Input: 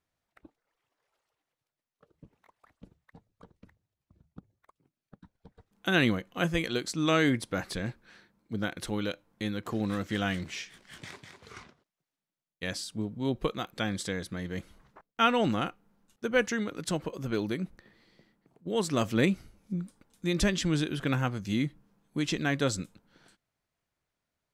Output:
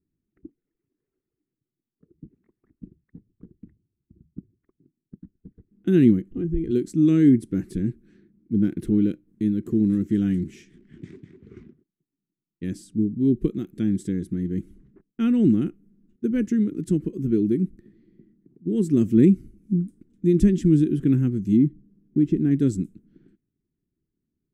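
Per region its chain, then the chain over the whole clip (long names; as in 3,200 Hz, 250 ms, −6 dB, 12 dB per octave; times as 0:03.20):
0:06.31–0:06.71: RIAA equalisation playback + downward compressor 4 to 1, threshold −32 dBFS + comb filter 2.5 ms, depth 57%
0:08.56–0:09.28: parametric band 7,400 Hz −9 dB 1.3 octaves + leveller curve on the samples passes 1
0:21.57–0:22.51: one scale factor per block 5 bits + low-pass filter 1,300 Hz 6 dB per octave
whole clip: drawn EQ curve 100 Hz 0 dB, 230 Hz +10 dB, 370 Hz +12 dB, 550 Hz −13 dB, 900 Hz −19 dB, 1,800 Hz −7 dB, 2,600 Hz −8 dB, 4,400 Hz −12 dB, 8,100 Hz 0 dB; low-pass that shuts in the quiet parts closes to 1,800 Hz, open at −31.5 dBFS; low-shelf EQ 290 Hz +12 dB; level −5 dB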